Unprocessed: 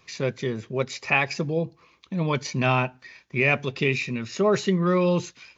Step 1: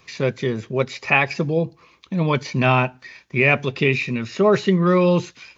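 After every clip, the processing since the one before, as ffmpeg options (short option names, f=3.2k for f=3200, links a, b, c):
-filter_complex "[0:a]acrossover=split=4300[a][b];[b]acompressor=threshold=-49dB:ratio=4:attack=1:release=60[c];[a][c]amix=inputs=2:normalize=0,volume=5dB"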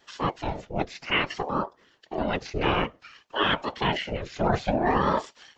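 -af "afftfilt=real='hypot(re,im)*cos(2*PI*random(0))':imag='hypot(re,im)*sin(2*PI*random(1))':win_size=512:overlap=0.75,aeval=exprs='val(0)*sin(2*PI*500*n/s+500*0.55/0.57*sin(2*PI*0.57*n/s))':c=same,volume=1.5dB"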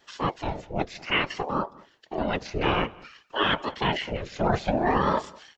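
-filter_complex "[0:a]asplit=2[a][b];[b]adelay=198.3,volume=-23dB,highshelf=f=4k:g=-4.46[c];[a][c]amix=inputs=2:normalize=0"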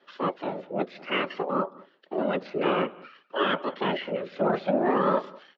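-filter_complex "[0:a]asplit=2[a][b];[b]asoftclip=type=tanh:threshold=-20dB,volume=-5dB[c];[a][c]amix=inputs=2:normalize=0,highpass=f=180:w=0.5412,highpass=f=180:w=1.3066,equalizer=f=180:t=q:w=4:g=8,equalizer=f=260:t=q:w=4:g=5,equalizer=f=380:t=q:w=4:g=8,equalizer=f=560:t=q:w=4:g=9,equalizer=f=1.3k:t=q:w=4:g=7,lowpass=f=4k:w=0.5412,lowpass=f=4k:w=1.3066,volume=-8dB"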